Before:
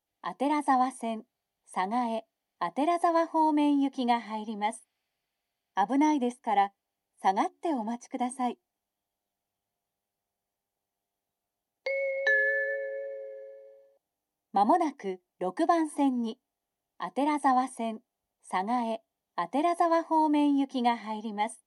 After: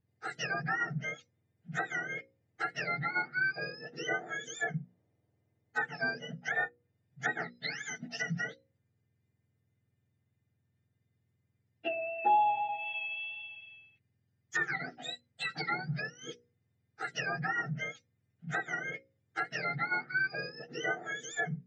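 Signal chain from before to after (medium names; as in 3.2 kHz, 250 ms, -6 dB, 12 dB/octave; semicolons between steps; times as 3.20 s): spectrum inverted on a logarithmic axis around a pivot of 1.2 kHz; hum notches 60/120/180/240/300/360/420/480/540 Hz; low-pass that closes with the level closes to 1.3 kHz, closed at -29 dBFS; trim +1.5 dB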